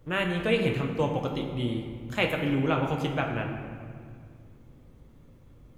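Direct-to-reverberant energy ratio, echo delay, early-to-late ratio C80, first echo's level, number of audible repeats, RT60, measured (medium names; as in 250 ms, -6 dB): 1.0 dB, no echo, 6.5 dB, no echo, no echo, 2.1 s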